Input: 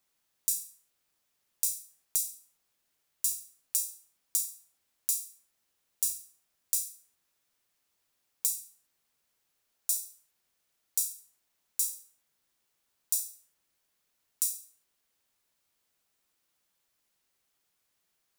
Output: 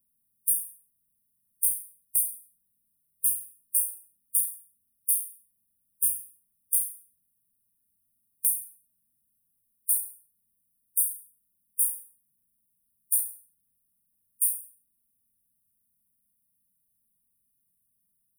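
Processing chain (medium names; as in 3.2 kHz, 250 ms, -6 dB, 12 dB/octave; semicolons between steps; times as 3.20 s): brick-wall FIR band-stop 270–8800 Hz; harmonic-percussive split harmonic +9 dB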